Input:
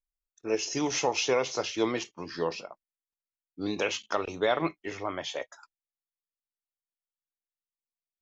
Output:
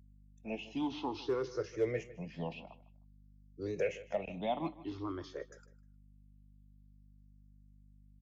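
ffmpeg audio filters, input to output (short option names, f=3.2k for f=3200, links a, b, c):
-filter_complex "[0:a]afftfilt=real='re*pow(10,20/40*sin(2*PI*(0.53*log(max(b,1)*sr/1024/100)/log(2)-(0.52)*(pts-256)/sr)))':imag='im*pow(10,20/40*sin(2*PI*(0.53*log(max(b,1)*sr/1024/100)/log(2)-(0.52)*(pts-256)/sr)))':win_size=1024:overlap=0.75,bass=f=250:g=2,treble=f=4k:g=-6,acrossover=split=220|380|3000[a][b][c][d];[b]volume=33.5dB,asoftclip=hard,volume=-33.5dB[e];[d]acompressor=threshold=-51dB:ratio=16[f];[a][e][c][f]amix=inputs=4:normalize=0,aeval=exprs='val(0)+0.00251*(sin(2*PI*50*n/s)+sin(2*PI*2*50*n/s)/2+sin(2*PI*3*50*n/s)/3+sin(2*PI*4*50*n/s)/4+sin(2*PI*5*50*n/s)/5)':c=same,equalizer=f=1.3k:t=o:w=1.7:g=-12,asplit=2[g][h];[h]adelay=154,lowpass=f=5k:p=1,volume=-17dB,asplit=2[i][j];[j]adelay=154,lowpass=f=5k:p=1,volume=0.25[k];[g][i][k]amix=inputs=3:normalize=0,volume=-6.5dB"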